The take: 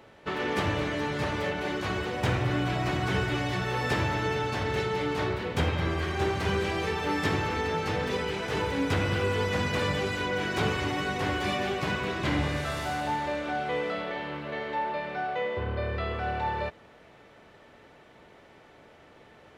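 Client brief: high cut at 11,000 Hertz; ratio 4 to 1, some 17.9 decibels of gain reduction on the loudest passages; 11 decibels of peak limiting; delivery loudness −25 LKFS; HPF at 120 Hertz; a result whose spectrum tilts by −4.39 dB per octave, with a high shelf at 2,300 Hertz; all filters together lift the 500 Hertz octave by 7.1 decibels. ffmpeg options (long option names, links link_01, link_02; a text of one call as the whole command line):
ffmpeg -i in.wav -af "highpass=120,lowpass=11000,equalizer=frequency=500:width_type=o:gain=8,highshelf=frequency=2300:gain=7.5,acompressor=threshold=-42dB:ratio=4,volume=21dB,alimiter=limit=-16.5dB:level=0:latency=1" out.wav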